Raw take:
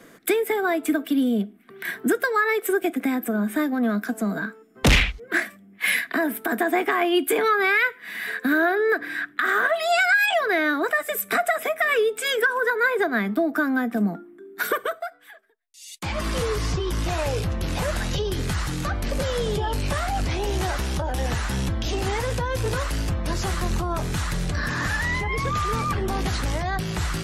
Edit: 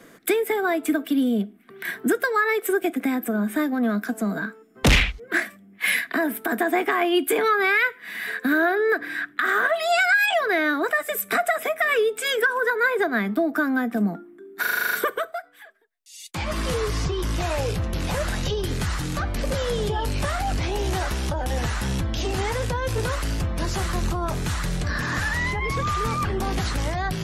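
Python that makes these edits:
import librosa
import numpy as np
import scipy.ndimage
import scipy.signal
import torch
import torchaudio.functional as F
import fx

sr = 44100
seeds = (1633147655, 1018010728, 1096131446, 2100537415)

y = fx.edit(x, sr, fx.stutter(start_s=14.61, slice_s=0.04, count=9), tone=tone)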